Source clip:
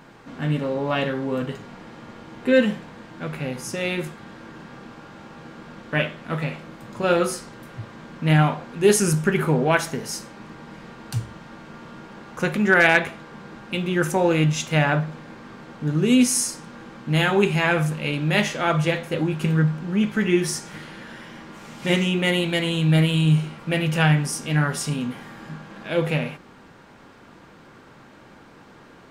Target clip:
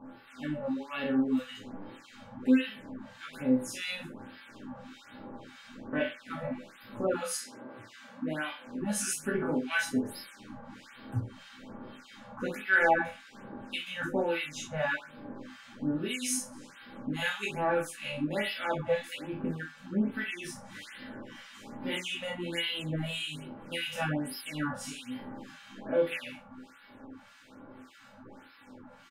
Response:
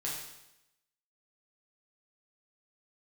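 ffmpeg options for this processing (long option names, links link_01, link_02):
-filter_complex "[0:a]asettb=1/sr,asplit=3[link_01][link_02][link_03];[link_01]atrim=end=7.134[link_04];[link_02]atrim=start=7.13:end=8.66,asetpts=PTS-STARTPTS,afade=type=in:duration=0.004:curve=qsin,afade=type=out:start_time=1.526:duration=0.004:curve=qsin,highpass=230[link_05];[link_03]atrim=start=8.656[link_06];[link_04][link_05]acrossfade=duration=0.004:curve1=hsin:curve2=qsin[link_07];[link_07][link_06]acrossfade=duration=0.004:curve1=qsin:curve2=hsin,asplit=2[link_08][link_09];[link_09]acompressor=threshold=-31dB:ratio=6,volume=1dB[link_10];[link_08][link_10]amix=inputs=2:normalize=0,acrossover=split=1300[link_11][link_12];[link_11]aeval=exprs='val(0)*(1-1/2+1/2*cos(2*PI*1.7*n/s))':channel_layout=same[link_13];[link_12]aeval=exprs='val(0)*(1-1/2-1/2*cos(2*PI*1.7*n/s))':channel_layout=same[link_14];[link_13][link_14]amix=inputs=2:normalize=0,aecho=1:1:83:0.0944[link_15];[1:a]atrim=start_sample=2205,atrim=end_sample=6174,asetrate=83790,aresample=44100[link_16];[link_15][link_16]afir=irnorm=-1:irlink=0,afftfilt=real='re*(1-between(b*sr/1024,310*pow(7700/310,0.5+0.5*sin(2*PI*1.2*pts/sr))/1.41,310*pow(7700/310,0.5+0.5*sin(2*PI*1.2*pts/sr))*1.41))':imag='im*(1-between(b*sr/1024,310*pow(7700/310,0.5+0.5*sin(2*PI*1.2*pts/sr))/1.41,310*pow(7700/310,0.5+0.5*sin(2*PI*1.2*pts/sr))*1.41))':win_size=1024:overlap=0.75,volume=-2.5dB"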